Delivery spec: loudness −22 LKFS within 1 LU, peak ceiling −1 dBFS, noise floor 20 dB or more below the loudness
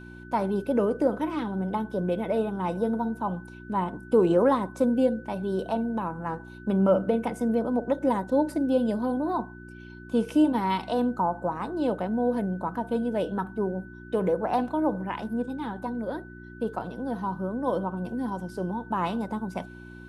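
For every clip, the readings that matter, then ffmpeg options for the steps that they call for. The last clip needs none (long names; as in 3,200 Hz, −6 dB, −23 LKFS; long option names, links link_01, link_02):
mains hum 60 Hz; hum harmonics up to 360 Hz; level of the hum −43 dBFS; interfering tone 1,500 Hz; level of the tone −48 dBFS; integrated loudness −27.5 LKFS; sample peak −11.0 dBFS; target loudness −22.0 LKFS
→ -af "bandreject=frequency=60:width_type=h:width=4,bandreject=frequency=120:width_type=h:width=4,bandreject=frequency=180:width_type=h:width=4,bandreject=frequency=240:width_type=h:width=4,bandreject=frequency=300:width_type=h:width=4,bandreject=frequency=360:width_type=h:width=4"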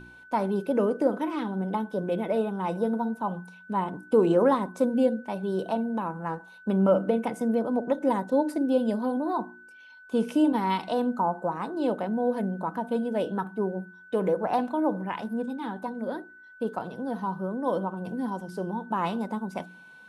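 mains hum none found; interfering tone 1,500 Hz; level of the tone −48 dBFS
→ -af "bandreject=frequency=1500:width=30"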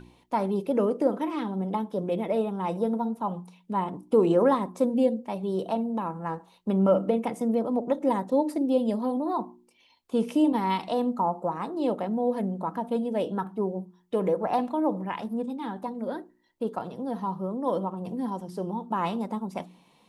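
interfering tone none found; integrated loudness −28.0 LKFS; sample peak −10.5 dBFS; target loudness −22.0 LKFS
→ -af "volume=6dB"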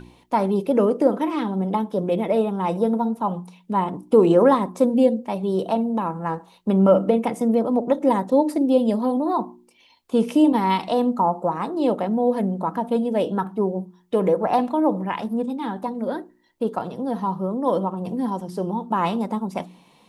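integrated loudness −22.0 LKFS; sample peak −4.5 dBFS; background noise floor −56 dBFS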